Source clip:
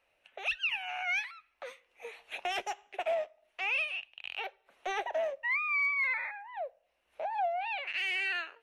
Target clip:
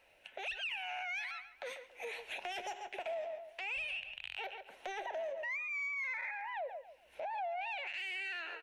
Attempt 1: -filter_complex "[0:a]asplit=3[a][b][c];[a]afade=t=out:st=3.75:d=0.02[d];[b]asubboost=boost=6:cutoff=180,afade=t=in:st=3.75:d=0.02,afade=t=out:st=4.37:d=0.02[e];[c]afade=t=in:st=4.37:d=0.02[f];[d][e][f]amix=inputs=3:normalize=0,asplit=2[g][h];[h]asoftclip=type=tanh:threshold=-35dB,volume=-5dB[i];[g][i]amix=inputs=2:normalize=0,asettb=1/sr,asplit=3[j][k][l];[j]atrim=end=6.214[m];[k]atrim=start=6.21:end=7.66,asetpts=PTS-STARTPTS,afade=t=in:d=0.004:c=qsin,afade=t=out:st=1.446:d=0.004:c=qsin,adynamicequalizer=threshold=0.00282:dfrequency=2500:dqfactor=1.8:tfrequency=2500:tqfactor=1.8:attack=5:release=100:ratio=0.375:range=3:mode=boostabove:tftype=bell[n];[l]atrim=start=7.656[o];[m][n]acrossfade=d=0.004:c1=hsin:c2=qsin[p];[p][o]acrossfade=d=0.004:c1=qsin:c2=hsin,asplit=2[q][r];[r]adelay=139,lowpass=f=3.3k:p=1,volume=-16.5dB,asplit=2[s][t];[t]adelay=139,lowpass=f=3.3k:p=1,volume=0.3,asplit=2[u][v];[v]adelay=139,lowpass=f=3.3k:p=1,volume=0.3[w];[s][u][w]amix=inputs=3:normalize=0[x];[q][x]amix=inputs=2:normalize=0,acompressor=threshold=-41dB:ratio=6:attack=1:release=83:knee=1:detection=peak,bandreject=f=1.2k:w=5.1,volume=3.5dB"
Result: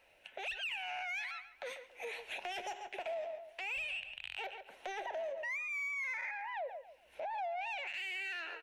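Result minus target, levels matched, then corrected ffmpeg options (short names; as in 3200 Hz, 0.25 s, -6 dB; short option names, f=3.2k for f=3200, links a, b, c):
soft clip: distortion +11 dB
-filter_complex "[0:a]asplit=3[a][b][c];[a]afade=t=out:st=3.75:d=0.02[d];[b]asubboost=boost=6:cutoff=180,afade=t=in:st=3.75:d=0.02,afade=t=out:st=4.37:d=0.02[e];[c]afade=t=in:st=4.37:d=0.02[f];[d][e][f]amix=inputs=3:normalize=0,asplit=2[g][h];[h]asoftclip=type=tanh:threshold=-26dB,volume=-5dB[i];[g][i]amix=inputs=2:normalize=0,asettb=1/sr,asplit=3[j][k][l];[j]atrim=end=6.214[m];[k]atrim=start=6.21:end=7.66,asetpts=PTS-STARTPTS,afade=t=in:d=0.004:c=qsin,afade=t=out:st=1.446:d=0.004:c=qsin,adynamicequalizer=threshold=0.00282:dfrequency=2500:dqfactor=1.8:tfrequency=2500:tqfactor=1.8:attack=5:release=100:ratio=0.375:range=3:mode=boostabove:tftype=bell[n];[l]atrim=start=7.656[o];[m][n]acrossfade=d=0.004:c1=hsin:c2=qsin[p];[p][o]acrossfade=d=0.004:c1=qsin:c2=hsin,asplit=2[q][r];[r]adelay=139,lowpass=f=3.3k:p=1,volume=-16.5dB,asplit=2[s][t];[t]adelay=139,lowpass=f=3.3k:p=1,volume=0.3,asplit=2[u][v];[v]adelay=139,lowpass=f=3.3k:p=1,volume=0.3[w];[s][u][w]amix=inputs=3:normalize=0[x];[q][x]amix=inputs=2:normalize=0,acompressor=threshold=-41dB:ratio=6:attack=1:release=83:knee=1:detection=peak,bandreject=f=1.2k:w=5.1,volume=3.5dB"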